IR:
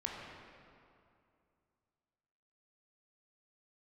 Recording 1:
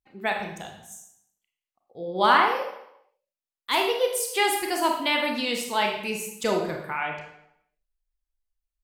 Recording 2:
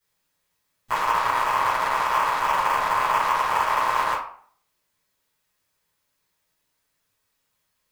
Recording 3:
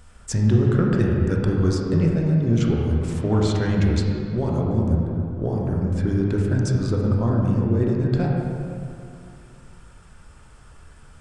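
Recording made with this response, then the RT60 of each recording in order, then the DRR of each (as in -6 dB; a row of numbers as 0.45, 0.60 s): 3; 0.80, 0.55, 2.5 s; 1.5, -12.5, -2.0 dB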